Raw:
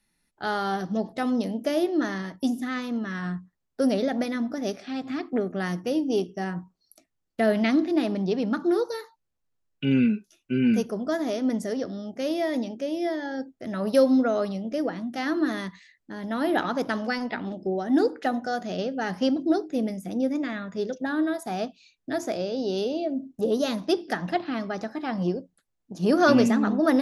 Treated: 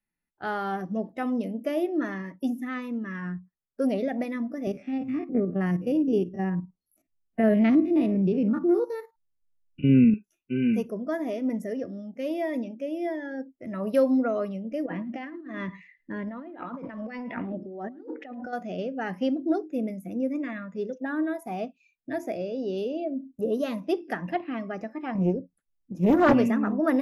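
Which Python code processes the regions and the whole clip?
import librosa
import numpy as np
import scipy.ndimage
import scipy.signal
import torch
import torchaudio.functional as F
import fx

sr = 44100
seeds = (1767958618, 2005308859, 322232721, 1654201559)

y = fx.chain(x, sr, fx.spec_steps(hold_ms=50),
    fx.low_shelf(hz=310.0, db=10.0), at=(4.67, 10.14))
y = fx.chain(y, sr, fx.lowpass(hz=4200.0, slope=12),
    fx.over_compress(threshold_db=-34.0, ratio=-1.0),
    fx.echo_single(ms=109, db=-17.5), at=(14.86, 18.53))
y = fx.chain(y, sr, fx.low_shelf(hz=300.0, db=8.0),
    fx.doppler_dist(depth_ms=0.49), at=(25.15, 26.34))
y = fx.noise_reduce_blind(y, sr, reduce_db=11)
y = fx.band_shelf(y, sr, hz=5800.0, db=-11.5, octaves=1.7)
y = y * librosa.db_to_amplitude(-2.5)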